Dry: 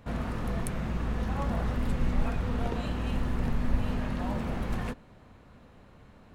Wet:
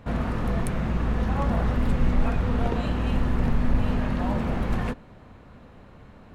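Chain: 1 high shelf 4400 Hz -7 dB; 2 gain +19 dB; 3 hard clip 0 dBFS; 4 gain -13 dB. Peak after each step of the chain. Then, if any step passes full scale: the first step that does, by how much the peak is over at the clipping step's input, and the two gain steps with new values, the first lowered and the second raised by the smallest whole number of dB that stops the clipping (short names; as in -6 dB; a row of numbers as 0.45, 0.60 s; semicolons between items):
-14.0, +5.0, 0.0, -13.0 dBFS; step 2, 5.0 dB; step 2 +14 dB, step 4 -8 dB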